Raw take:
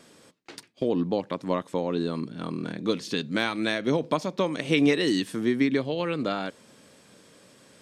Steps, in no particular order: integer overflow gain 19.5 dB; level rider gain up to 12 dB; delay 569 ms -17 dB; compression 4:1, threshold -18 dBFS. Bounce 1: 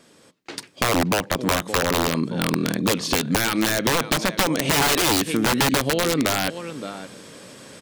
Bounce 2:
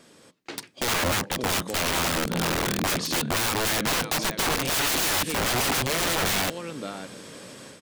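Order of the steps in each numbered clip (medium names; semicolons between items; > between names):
delay > integer overflow > level rider > compression; level rider > delay > integer overflow > compression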